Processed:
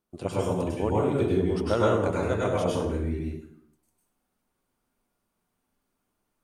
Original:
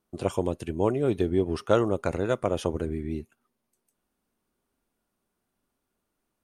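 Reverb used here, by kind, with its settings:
dense smooth reverb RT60 0.7 s, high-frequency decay 0.75×, pre-delay 90 ms, DRR −5.5 dB
level −4.5 dB

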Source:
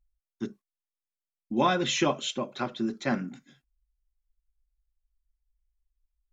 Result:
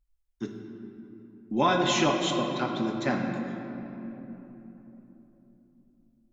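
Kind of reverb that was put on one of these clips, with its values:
rectangular room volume 220 cubic metres, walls hard, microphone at 0.38 metres

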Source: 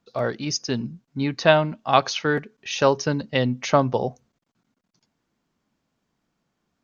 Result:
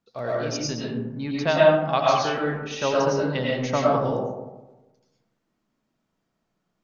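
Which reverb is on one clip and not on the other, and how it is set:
comb and all-pass reverb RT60 1.1 s, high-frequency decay 0.35×, pre-delay 70 ms, DRR −5 dB
level −7.5 dB

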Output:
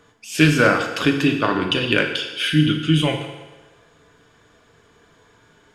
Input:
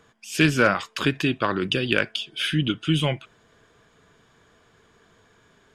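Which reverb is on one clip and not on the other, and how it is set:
feedback delay network reverb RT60 1.2 s, low-frequency decay 0.75×, high-frequency decay 0.9×, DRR 2.5 dB
level +2 dB

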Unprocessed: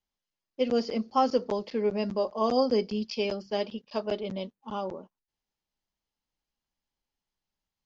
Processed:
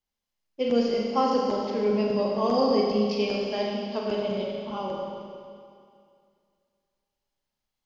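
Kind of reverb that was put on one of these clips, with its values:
four-comb reverb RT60 2.3 s, combs from 30 ms, DRR −2 dB
level −1 dB

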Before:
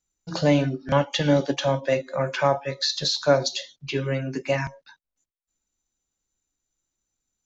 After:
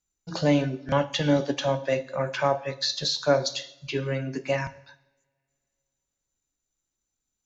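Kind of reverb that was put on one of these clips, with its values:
coupled-rooms reverb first 0.81 s, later 2.8 s, from −27 dB, DRR 14.5 dB
level −2.5 dB

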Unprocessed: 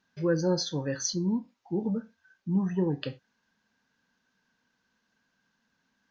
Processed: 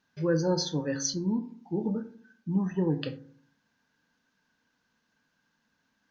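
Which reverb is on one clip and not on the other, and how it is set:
feedback delay network reverb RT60 0.56 s, low-frequency decay 1.35×, high-frequency decay 0.25×, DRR 10 dB

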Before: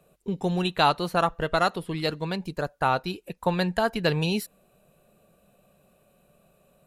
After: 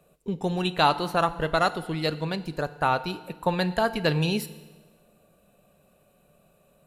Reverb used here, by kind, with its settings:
feedback delay network reverb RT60 1.3 s, low-frequency decay 1.05×, high-frequency decay 0.9×, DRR 13 dB

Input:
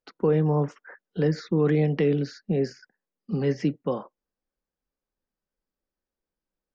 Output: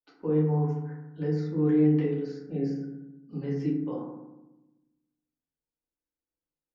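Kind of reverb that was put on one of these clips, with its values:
feedback delay network reverb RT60 1 s, low-frequency decay 1.45×, high-frequency decay 0.35×, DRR −6 dB
level −16.5 dB

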